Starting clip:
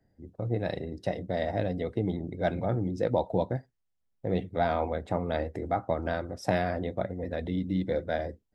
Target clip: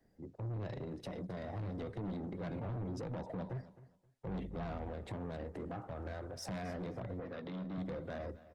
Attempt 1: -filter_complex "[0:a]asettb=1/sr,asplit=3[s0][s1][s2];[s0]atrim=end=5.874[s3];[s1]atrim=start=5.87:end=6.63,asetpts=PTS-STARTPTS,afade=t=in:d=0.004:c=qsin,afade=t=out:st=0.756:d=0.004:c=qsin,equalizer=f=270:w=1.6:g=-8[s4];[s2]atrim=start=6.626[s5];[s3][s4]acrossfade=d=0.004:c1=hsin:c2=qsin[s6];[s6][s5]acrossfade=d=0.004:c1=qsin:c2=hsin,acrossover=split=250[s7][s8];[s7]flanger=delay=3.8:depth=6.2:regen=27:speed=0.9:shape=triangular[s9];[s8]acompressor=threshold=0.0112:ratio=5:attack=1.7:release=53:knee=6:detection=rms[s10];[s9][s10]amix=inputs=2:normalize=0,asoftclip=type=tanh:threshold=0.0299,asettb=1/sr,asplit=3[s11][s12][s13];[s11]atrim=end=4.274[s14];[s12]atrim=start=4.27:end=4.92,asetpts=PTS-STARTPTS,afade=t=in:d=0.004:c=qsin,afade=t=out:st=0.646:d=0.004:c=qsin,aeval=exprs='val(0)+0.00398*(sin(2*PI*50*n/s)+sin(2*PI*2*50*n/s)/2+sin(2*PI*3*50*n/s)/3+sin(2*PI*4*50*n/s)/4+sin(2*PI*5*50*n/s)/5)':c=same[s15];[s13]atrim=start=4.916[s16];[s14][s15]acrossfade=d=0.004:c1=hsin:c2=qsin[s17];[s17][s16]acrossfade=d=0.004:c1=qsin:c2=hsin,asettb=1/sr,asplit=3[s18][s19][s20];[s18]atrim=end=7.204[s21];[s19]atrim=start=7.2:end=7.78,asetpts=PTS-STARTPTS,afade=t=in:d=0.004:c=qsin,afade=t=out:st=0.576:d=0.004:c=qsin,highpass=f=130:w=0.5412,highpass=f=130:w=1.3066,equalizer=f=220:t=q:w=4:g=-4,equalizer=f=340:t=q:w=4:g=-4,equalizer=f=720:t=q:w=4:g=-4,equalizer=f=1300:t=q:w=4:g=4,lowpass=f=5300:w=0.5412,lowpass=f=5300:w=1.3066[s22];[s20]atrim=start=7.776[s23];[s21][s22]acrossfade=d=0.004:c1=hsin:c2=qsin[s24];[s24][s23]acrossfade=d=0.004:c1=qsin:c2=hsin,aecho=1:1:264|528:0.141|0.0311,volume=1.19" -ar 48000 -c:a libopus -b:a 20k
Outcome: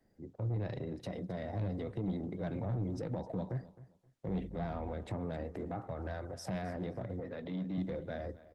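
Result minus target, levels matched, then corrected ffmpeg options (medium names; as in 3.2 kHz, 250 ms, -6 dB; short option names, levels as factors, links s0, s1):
saturation: distortion -7 dB
-filter_complex "[0:a]asettb=1/sr,asplit=3[s0][s1][s2];[s0]atrim=end=5.874[s3];[s1]atrim=start=5.87:end=6.63,asetpts=PTS-STARTPTS,afade=t=in:d=0.004:c=qsin,afade=t=out:st=0.756:d=0.004:c=qsin,equalizer=f=270:w=1.6:g=-8[s4];[s2]atrim=start=6.626[s5];[s3][s4]acrossfade=d=0.004:c1=hsin:c2=qsin[s6];[s6][s5]acrossfade=d=0.004:c1=qsin:c2=hsin,acrossover=split=250[s7][s8];[s7]flanger=delay=3.8:depth=6.2:regen=27:speed=0.9:shape=triangular[s9];[s8]acompressor=threshold=0.0112:ratio=5:attack=1.7:release=53:knee=6:detection=rms[s10];[s9][s10]amix=inputs=2:normalize=0,asoftclip=type=tanh:threshold=0.0119,asettb=1/sr,asplit=3[s11][s12][s13];[s11]atrim=end=4.274[s14];[s12]atrim=start=4.27:end=4.92,asetpts=PTS-STARTPTS,afade=t=in:d=0.004:c=qsin,afade=t=out:st=0.646:d=0.004:c=qsin,aeval=exprs='val(0)+0.00398*(sin(2*PI*50*n/s)+sin(2*PI*2*50*n/s)/2+sin(2*PI*3*50*n/s)/3+sin(2*PI*4*50*n/s)/4+sin(2*PI*5*50*n/s)/5)':c=same[s15];[s13]atrim=start=4.916[s16];[s14][s15]acrossfade=d=0.004:c1=hsin:c2=qsin[s17];[s17][s16]acrossfade=d=0.004:c1=qsin:c2=hsin,asettb=1/sr,asplit=3[s18][s19][s20];[s18]atrim=end=7.204[s21];[s19]atrim=start=7.2:end=7.78,asetpts=PTS-STARTPTS,afade=t=in:d=0.004:c=qsin,afade=t=out:st=0.576:d=0.004:c=qsin,highpass=f=130:w=0.5412,highpass=f=130:w=1.3066,equalizer=f=220:t=q:w=4:g=-4,equalizer=f=340:t=q:w=4:g=-4,equalizer=f=720:t=q:w=4:g=-4,equalizer=f=1300:t=q:w=4:g=4,lowpass=f=5300:w=0.5412,lowpass=f=5300:w=1.3066[s22];[s20]atrim=start=7.776[s23];[s21][s22]acrossfade=d=0.004:c1=hsin:c2=qsin[s24];[s24][s23]acrossfade=d=0.004:c1=qsin:c2=hsin,aecho=1:1:264|528:0.141|0.0311,volume=1.19" -ar 48000 -c:a libopus -b:a 20k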